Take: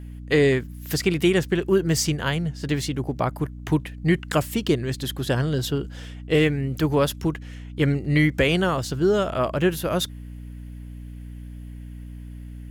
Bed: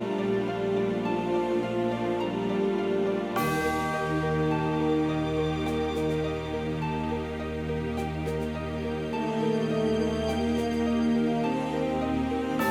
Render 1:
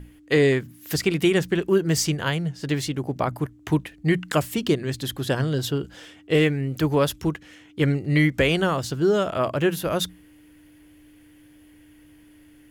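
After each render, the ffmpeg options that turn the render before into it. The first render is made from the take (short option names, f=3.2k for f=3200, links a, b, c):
-af "bandreject=f=60:t=h:w=6,bandreject=f=120:t=h:w=6,bandreject=f=180:t=h:w=6,bandreject=f=240:t=h:w=6"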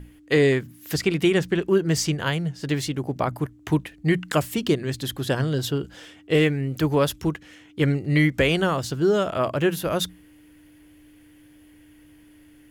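-filter_complex "[0:a]asettb=1/sr,asplit=3[a][b][c];[a]atrim=end=0.914[d];[b]atrim=start=0.91:end=2.2,asetpts=PTS-STARTPTS,afade=t=in:d=0.004:c=qsin,afade=t=out:st=1.286:d=0.004:c=qsin,highshelf=f=9.8k:g=-7[e];[c]atrim=start=2.196[f];[d][e]acrossfade=d=0.004:c1=hsin:c2=qsin[g];[g][f]acrossfade=d=0.004:c1=qsin:c2=hsin"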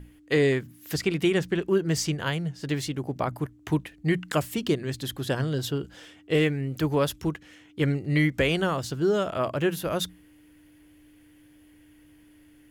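-af "volume=-3.5dB"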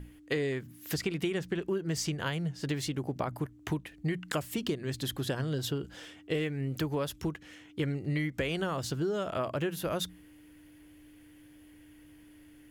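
-af "acompressor=threshold=-29dB:ratio=5"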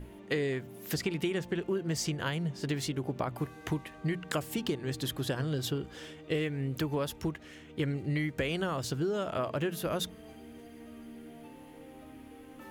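-filter_complex "[1:a]volume=-23.5dB[a];[0:a][a]amix=inputs=2:normalize=0"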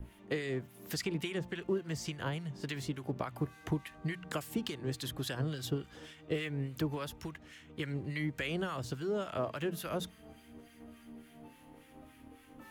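-filter_complex "[0:a]acrossover=split=1100[a][b];[a]aeval=exprs='val(0)*(1-0.7/2+0.7/2*cos(2*PI*3.5*n/s))':c=same[c];[b]aeval=exprs='val(0)*(1-0.7/2-0.7/2*cos(2*PI*3.5*n/s))':c=same[d];[c][d]amix=inputs=2:normalize=0,acrossover=split=320|560|2100[e][f][g][h];[f]aeval=exprs='sgn(val(0))*max(abs(val(0))-0.00119,0)':c=same[i];[e][i][g][h]amix=inputs=4:normalize=0"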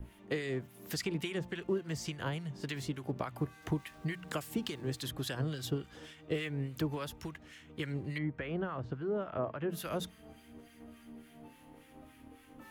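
-filter_complex "[0:a]asettb=1/sr,asplit=3[a][b][c];[a]atrim=end=3.624[d];[b]atrim=start=3.62:end=5.04,asetpts=PTS-STARTPTS,afade=t=in:d=0.004:c=qsin,afade=t=out:st=1.416:d=0.004:c=qsin,aeval=exprs='val(0)*gte(abs(val(0)),0.00133)':c=same[e];[c]atrim=start=5.036[f];[d][e]acrossfade=d=0.004:c1=hsin:c2=qsin[g];[g][f]acrossfade=d=0.004:c1=qsin:c2=hsin,asettb=1/sr,asplit=3[h][i][j];[h]atrim=end=8.184[k];[i]atrim=start=8.18:end=9.7,asetpts=PTS-STARTPTS,afade=t=in:d=0.004:c=qsin,afade=t=out:st=1.516:d=0.004:c=qsin,lowpass=1.6k[l];[j]atrim=start=9.696[m];[k][l]acrossfade=d=0.004:c1=hsin:c2=qsin[n];[n][m]acrossfade=d=0.004:c1=qsin:c2=hsin"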